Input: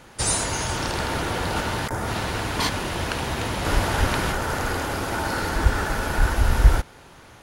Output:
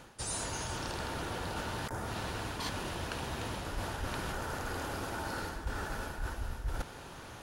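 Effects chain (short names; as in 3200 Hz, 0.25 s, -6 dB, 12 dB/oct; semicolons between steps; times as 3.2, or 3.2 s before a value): bell 2100 Hz -4.5 dB 0.22 oct; reverse; compressor 5:1, threshold -36 dBFS, peak gain reduction 25 dB; reverse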